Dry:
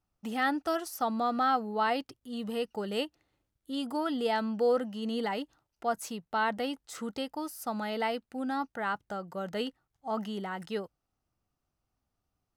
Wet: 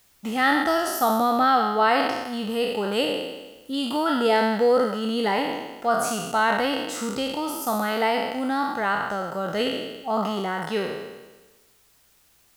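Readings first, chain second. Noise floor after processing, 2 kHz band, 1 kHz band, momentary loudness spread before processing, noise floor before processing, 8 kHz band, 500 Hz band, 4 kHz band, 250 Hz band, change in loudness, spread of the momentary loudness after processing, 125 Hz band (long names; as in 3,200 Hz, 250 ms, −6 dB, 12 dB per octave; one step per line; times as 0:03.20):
−60 dBFS, +10.5 dB, +9.5 dB, 10 LU, −84 dBFS, +12.0 dB, +9.0 dB, +11.0 dB, +8.0 dB, +9.0 dB, 9 LU, can't be measured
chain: peak hold with a decay on every bin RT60 1.18 s
background noise white −67 dBFS
level +6.5 dB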